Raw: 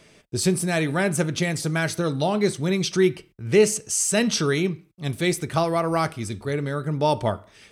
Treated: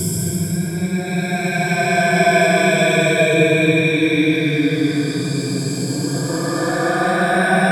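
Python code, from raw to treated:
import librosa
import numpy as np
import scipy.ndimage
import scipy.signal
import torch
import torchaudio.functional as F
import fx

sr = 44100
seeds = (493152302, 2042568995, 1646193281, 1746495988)

y = fx.spec_ripple(x, sr, per_octave=1.7, drift_hz=0.62, depth_db=16)
y = fx.echo_alternate(y, sr, ms=249, hz=1600.0, feedback_pct=54, wet_db=-6.5)
y = fx.paulstretch(y, sr, seeds[0], factor=20.0, window_s=0.1, from_s=0.62)
y = y * librosa.db_to_amplitude(3.0)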